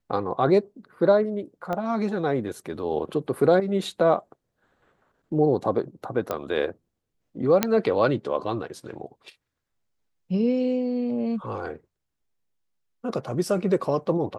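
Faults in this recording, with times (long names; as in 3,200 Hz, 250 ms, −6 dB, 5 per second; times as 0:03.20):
0:01.73: click −17 dBFS
0:06.31: click −14 dBFS
0:07.63: click −4 dBFS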